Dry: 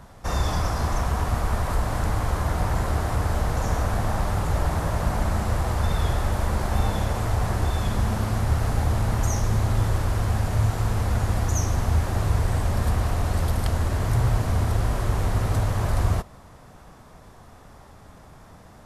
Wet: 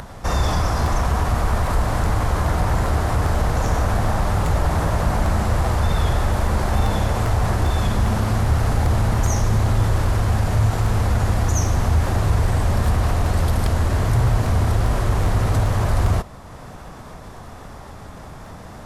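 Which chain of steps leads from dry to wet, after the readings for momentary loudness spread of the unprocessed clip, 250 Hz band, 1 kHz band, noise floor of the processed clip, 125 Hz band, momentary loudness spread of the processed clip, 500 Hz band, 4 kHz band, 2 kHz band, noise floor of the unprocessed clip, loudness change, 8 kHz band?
2 LU, +4.5 dB, +5.0 dB, -38 dBFS, +4.5 dB, 19 LU, +5.0 dB, +4.5 dB, +5.0 dB, -48 dBFS, +4.5 dB, +3.5 dB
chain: treble shelf 9.5 kHz -4 dB; in parallel at +2.5 dB: peak limiter -21.5 dBFS, peak gain reduction 11.5 dB; on the sum: upward compressor, threshold -31 dBFS; crackling interface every 0.40 s, samples 64, repeat, from 0.46 s

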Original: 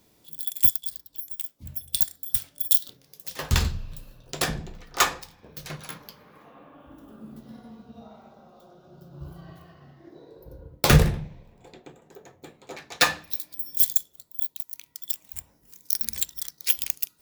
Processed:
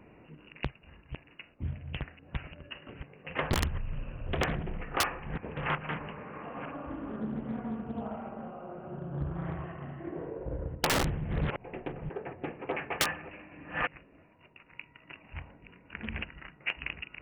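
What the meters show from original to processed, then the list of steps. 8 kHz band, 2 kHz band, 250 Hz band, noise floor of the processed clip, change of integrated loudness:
-13.0 dB, -3.5 dB, -2.0 dB, -60 dBFS, -11.5 dB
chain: chunks repeated in reverse 448 ms, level -11.5 dB; brick-wall FIR low-pass 2.9 kHz; integer overflow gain 14 dB; compression 4:1, threshold -38 dBFS, peak gain reduction 16.5 dB; loudspeaker Doppler distortion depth 0.86 ms; trim +9 dB

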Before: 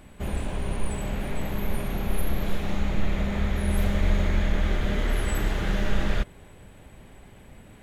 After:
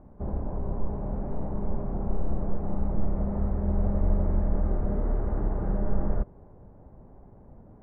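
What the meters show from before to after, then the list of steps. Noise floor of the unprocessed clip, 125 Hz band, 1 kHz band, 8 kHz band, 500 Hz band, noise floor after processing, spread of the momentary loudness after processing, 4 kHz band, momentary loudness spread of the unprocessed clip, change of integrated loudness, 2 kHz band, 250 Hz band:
-49 dBFS, -1.5 dB, -4.0 dB, under -40 dB, -1.5 dB, -51 dBFS, 7 LU, under -40 dB, 6 LU, -2.0 dB, -20.5 dB, -1.5 dB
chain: low-pass 1 kHz 24 dB/octave; trim -1.5 dB

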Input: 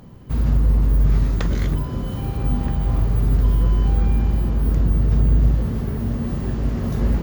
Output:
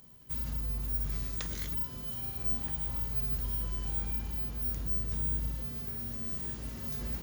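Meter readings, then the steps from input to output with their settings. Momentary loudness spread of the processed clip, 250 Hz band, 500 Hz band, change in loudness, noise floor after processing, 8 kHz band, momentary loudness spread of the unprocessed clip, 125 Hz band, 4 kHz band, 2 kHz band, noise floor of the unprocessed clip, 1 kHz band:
5 LU, -19.5 dB, -18.5 dB, -12.5 dB, -43 dBFS, no reading, 6 LU, -20.0 dB, -6.0 dB, -11.5 dB, -28 dBFS, -16.0 dB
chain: pre-emphasis filter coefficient 0.9

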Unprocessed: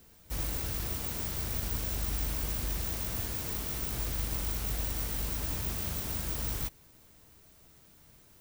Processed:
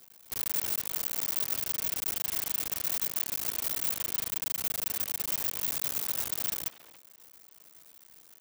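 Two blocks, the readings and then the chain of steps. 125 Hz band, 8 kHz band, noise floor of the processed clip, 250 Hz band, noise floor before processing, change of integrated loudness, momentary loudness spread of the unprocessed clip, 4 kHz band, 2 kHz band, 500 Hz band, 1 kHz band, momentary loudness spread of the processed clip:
-15.5 dB, +4.5 dB, -57 dBFS, -7.5 dB, -59 dBFS, +3.5 dB, 1 LU, +3.0 dB, +1.0 dB, -3.0 dB, -0.5 dB, 2 LU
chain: cycle switcher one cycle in 2, muted; wavefolder -29 dBFS; high-pass 520 Hz 6 dB/octave; treble shelf 4.9 kHz +6 dB; speakerphone echo 280 ms, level -12 dB; trim +3.5 dB

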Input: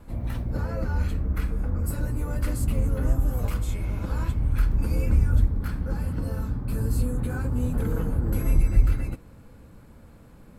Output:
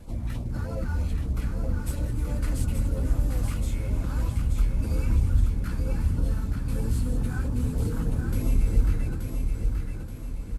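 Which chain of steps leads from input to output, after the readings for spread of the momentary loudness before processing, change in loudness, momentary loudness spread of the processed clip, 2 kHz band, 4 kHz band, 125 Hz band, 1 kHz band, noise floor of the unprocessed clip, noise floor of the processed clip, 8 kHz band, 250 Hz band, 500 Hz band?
7 LU, -1.5 dB, 6 LU, -2.0 dB, +1.5 dB, -1.0 dB, -3.0 dB, -49 dBFS, -34 dBFS, 0.0 dB, -1.0 dB, -2.5 dB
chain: CVSD coder 64 kbps; in parallel at +1.5 dB: compression, threshold -34 dBFS, peak gain reduction 21 dB; on the sum: LFO notch sine 3.1 Hz 460–1800 Hz; flange 0.91 Hz, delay 1 ms, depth 8.7 ms, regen -75%; feedback delay 878 ms, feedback 46%, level -5 dB

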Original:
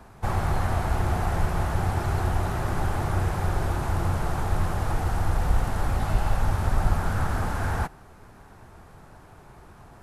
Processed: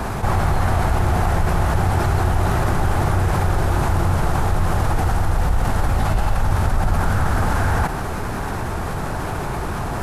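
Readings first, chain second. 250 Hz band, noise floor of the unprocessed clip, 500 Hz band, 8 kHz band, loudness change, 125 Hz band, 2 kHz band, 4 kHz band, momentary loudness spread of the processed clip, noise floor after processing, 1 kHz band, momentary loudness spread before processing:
+8.0 dB, -50 dBFS, +8.0 dB, +8.0 dB, +6.5 dB, +7.0 dB, +8.0 dB, +8.0 dB, 7 LU, -25 dBFS, +8.0 dB, 2 LU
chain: level flattener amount 70%; trim +1.5 dB

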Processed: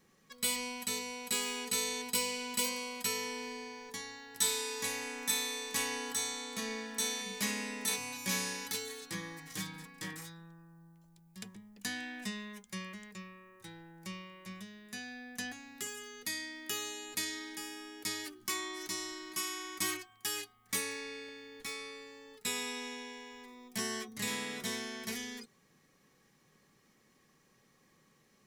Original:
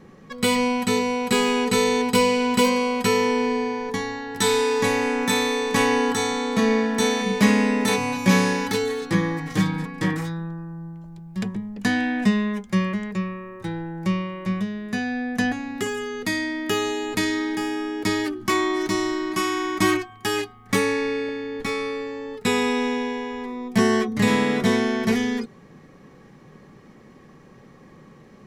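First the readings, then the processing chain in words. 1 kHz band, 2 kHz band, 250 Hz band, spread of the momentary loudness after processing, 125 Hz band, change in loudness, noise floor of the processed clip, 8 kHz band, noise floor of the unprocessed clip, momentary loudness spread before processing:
-18.5 dB, -14.0 dB, -22.5 dB, 15 LU, -23.0 dB, -14.0 dB, -69 dBFS, -3.5 dB, -49 dBFS, 10 LU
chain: pre-emphasis filter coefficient 0.9; trim -3 dB

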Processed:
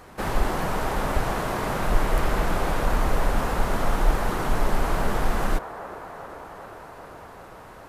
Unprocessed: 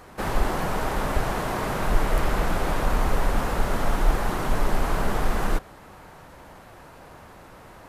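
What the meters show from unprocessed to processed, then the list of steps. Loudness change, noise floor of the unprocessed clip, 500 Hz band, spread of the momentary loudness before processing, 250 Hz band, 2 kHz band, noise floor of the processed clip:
0.0 dB, -47 dBFS, +0.5 dB, 21 LU, 0.0 dB, +0.5 dB, -44 dBFS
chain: feedback echo behind a band-pass 397 ms, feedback 75%, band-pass 790 Hz, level -10 dB

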